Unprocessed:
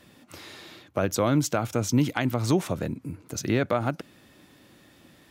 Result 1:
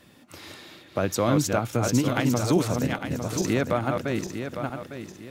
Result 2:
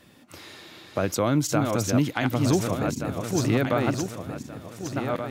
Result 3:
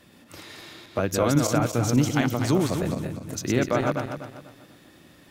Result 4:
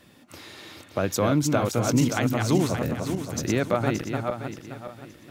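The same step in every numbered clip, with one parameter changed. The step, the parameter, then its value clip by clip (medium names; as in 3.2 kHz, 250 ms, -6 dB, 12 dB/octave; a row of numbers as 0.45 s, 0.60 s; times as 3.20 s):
backward echo that repeats, time: 427 ms, 739 ms, 123 ms, 287 ms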